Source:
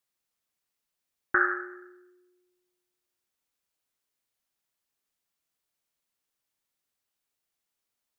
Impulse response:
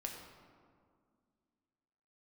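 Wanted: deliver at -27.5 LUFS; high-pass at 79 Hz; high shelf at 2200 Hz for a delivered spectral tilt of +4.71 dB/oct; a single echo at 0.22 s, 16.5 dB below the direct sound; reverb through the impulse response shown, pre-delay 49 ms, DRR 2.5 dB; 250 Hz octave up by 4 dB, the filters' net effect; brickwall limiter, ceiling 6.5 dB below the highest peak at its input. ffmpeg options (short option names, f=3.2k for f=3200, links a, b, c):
-filter_complex "[0:a]highpass=79,equalizer=f=250:t=o:g=8,highshelf=f=2.2k:g=5,alimiter=limit=-15.5dB:level=0:latency=1,aecho=1:1:220:0.15,asplit=2[a][b];[1:a]atrim=start_sample=2205,adelay=49[c];[b][c]afir=irnorm=-1:irlink=0,volume=-1.5dB[d];[a][d]amix=inputs=2:normalize=0,volume=2.5dB"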